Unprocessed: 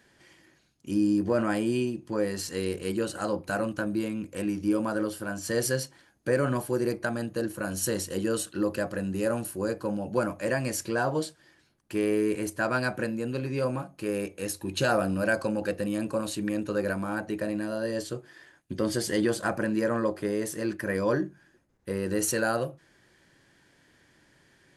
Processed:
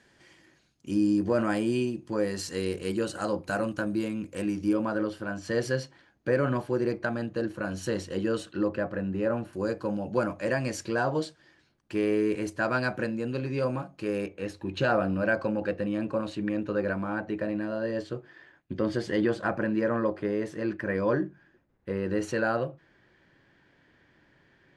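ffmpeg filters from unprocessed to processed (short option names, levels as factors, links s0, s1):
-af "asetnsamples=n=441:p=0,asendcmd='4.73 lowpass f 3900;8.68 lowpass f 2300;9.53 lowpass f 5600;14.26 lowpass f 3000',lowpass=8600"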